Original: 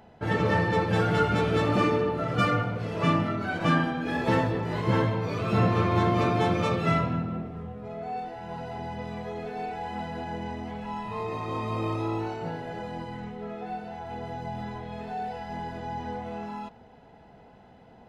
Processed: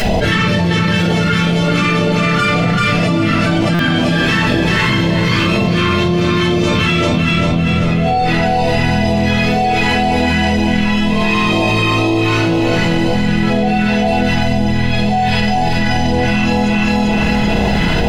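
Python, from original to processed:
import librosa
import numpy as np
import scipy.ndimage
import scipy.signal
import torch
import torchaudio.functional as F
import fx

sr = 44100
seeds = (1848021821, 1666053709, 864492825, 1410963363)

y = fx.tilt_shelf(x, sr, db=-7.5, hz=860.0)
y = fx.phaser_stages(y, sr, stages=2, low_hz=580.0, high_hz=1500.0, hz=2.0, feedback_pct=20)
y = fx.high_shelf(y, sr, hz=4400.0, db=-7.0)
y = fx.echo_feedback(y, sr, ms=389, feedback_pct=34, wet_db=-3.5)
y = fx.room_shoebox(y, sr, seeds[0], volume_m3=170.0, walls='furnished', distance_m=5.4)
y = fx.buffer_glitch(y, sr, at_s=(3.74,), block=256, repeats=8)
y = fx.env_flatten(y, sr, amount_pct=100)
y = y * librosa.db_to_amplitude(-1.0)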